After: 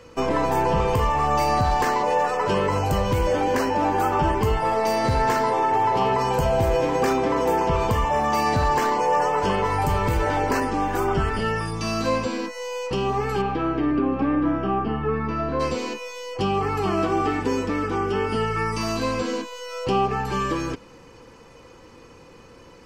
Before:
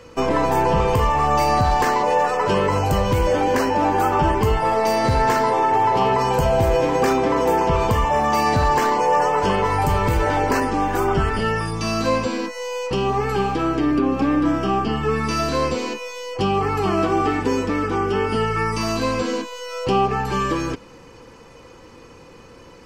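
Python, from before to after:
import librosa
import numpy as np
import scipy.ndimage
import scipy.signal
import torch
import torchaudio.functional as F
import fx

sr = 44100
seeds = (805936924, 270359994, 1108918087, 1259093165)

y = fx.lowpass(x, sr, hz=fx.line((13.41, 3200.0), (15.59, 1500.0)), slope=12, at=(13.41, 15.59), fade=0.02)
y = F.gain(torch.from_numpy(y), -3.0).numpy()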